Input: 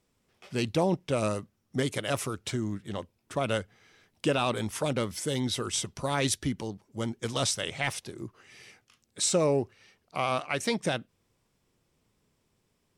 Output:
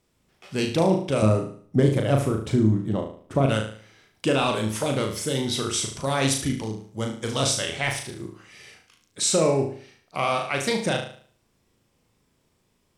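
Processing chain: 1.22–3.46 tilt shelf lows +8.5 dB; flutter echo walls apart 6.3 m, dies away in 0.49 s; gain +3 dB

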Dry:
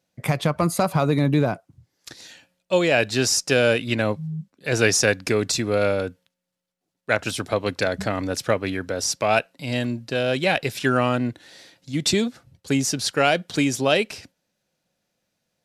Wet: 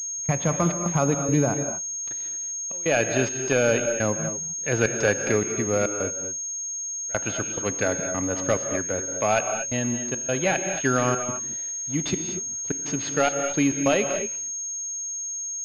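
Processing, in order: one-sided fold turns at -9.5 dBFS; step gate "x.xxx.xx.xx" 105 bpm -24 dB; in parallel at -11 dB: bit-crush 5-bit; on the sum: resonator 280 Hz, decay 0.36 s, harmonics all, mix 40%; non-linear reverb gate 0.26 s rising, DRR 6.5 dB; pulse-width modulation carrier 6500 Hz

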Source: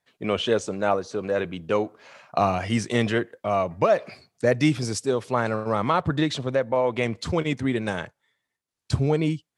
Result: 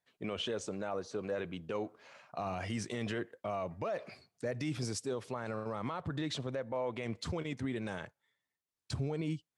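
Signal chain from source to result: limiter -19 dBFS, peak gain reduction 11 dB; gain -8.5 dB

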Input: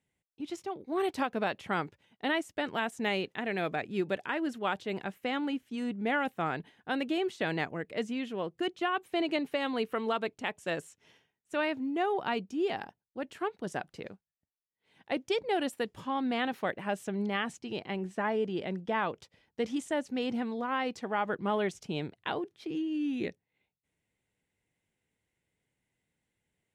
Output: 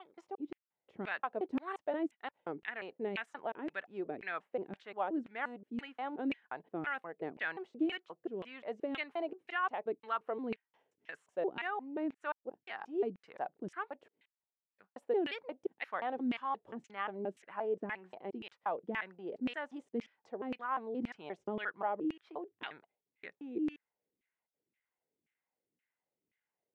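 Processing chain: slices in reverse order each 0.176 s, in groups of 5; LFO band-pass saw down 1.9 Hz 250–2400 Hz; gain +1 dB

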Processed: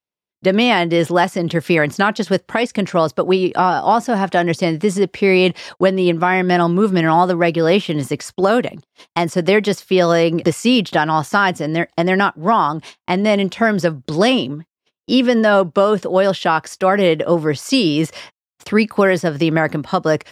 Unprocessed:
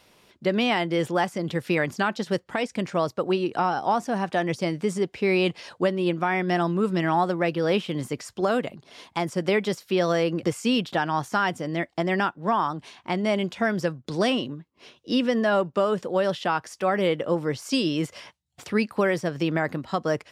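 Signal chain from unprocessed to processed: gate -43 dBFS, range -44 dB; gain +9 dB

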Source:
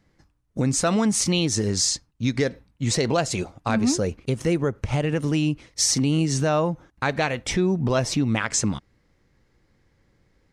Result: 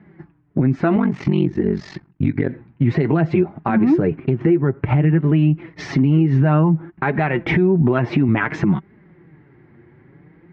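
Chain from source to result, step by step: speaker cabinet 110–2100 Hz, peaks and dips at 160 Hz +8 dB, 350 Hz +9 dB, 520 Hz -9 dB, 1200 Hz -4 dB; flange 0.56 Hz, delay 4.6 ms, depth 4.1 ms, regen +33%; 7.82–8.29 low shelf 170 Hz -7.5 dB; compressor 6:1, threshold -31 dBFS, peak gain reduction 16 dB; 0.96–2.49 ring modulator 23 Hz; maximiser +25.5 dB; gain -6.5 dB

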